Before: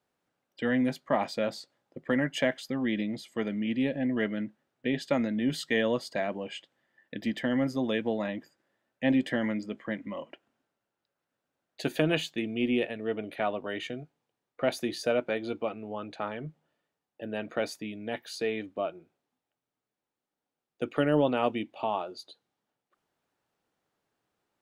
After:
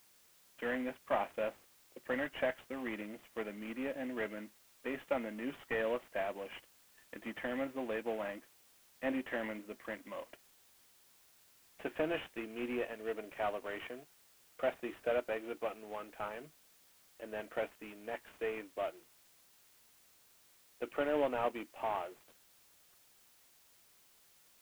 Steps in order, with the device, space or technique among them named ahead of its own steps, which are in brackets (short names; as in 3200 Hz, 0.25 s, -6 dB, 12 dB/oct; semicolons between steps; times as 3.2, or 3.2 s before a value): army field radio (BPF 390–2800 Hz; CVSD 16 kbps; white noise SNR 25 dB); gain -4.5 dB